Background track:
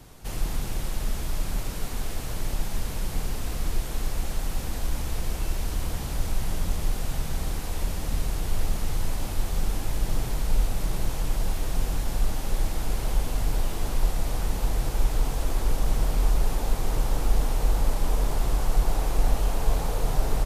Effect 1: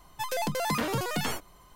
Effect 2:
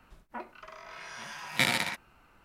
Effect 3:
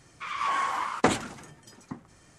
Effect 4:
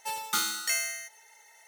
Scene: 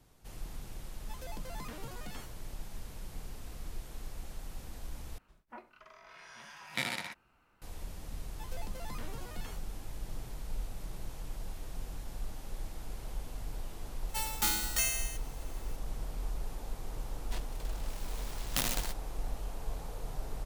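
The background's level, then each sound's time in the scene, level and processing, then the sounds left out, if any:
background track -15 dB
0.90 s: add 1 -17.5 dB
5.18 s: replace with 2 -8.5 dB
8.20 s: add 1 -18 dB
14.09 s: add 4 -2 dB + formants flattened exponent 0.3
16.97 s: add 2 -6.5 dB + delay time shaken by noise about 2.7 kHz, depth 0.22 ms
not used: 3

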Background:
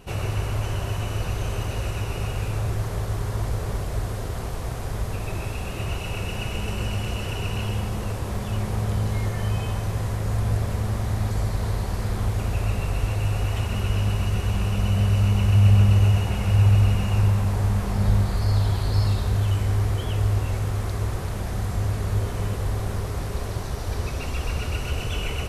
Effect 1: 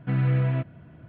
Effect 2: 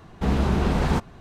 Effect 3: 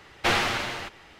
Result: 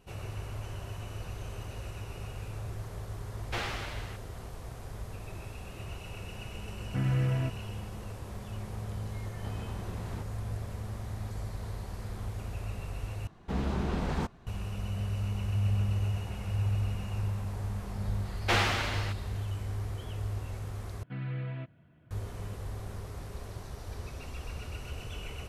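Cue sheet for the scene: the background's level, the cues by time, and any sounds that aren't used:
background -13 dB
3.28 s: add 3 -12.5 dB
6.87 s: add 1 -5.5 dB
9.23 s: add 2 -13 dB + compression, threshold -25 dBFS
13.27 s: replace with 2 -9.5 dB
18.24 s: add 3 -4 dB
21.03 s: replace with 1 -13.5 dB + treble shelf 2.9 kHz +11 dB

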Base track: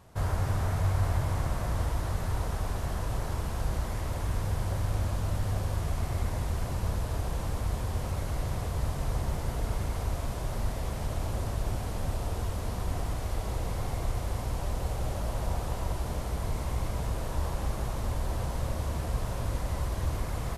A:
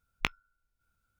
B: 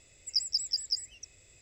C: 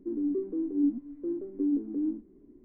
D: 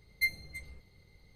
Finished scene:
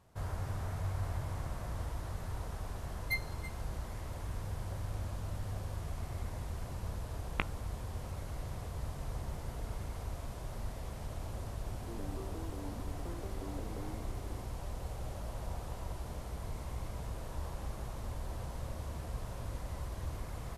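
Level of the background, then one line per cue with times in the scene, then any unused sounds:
base track -9.5 dB
2.89 s: add D -5.5 dB
7.15 s: add A -0.5 dB + distance through air 480 m
11.82 s: add C -14 dB + spectrum-flattening compressor 4:1
not used: B

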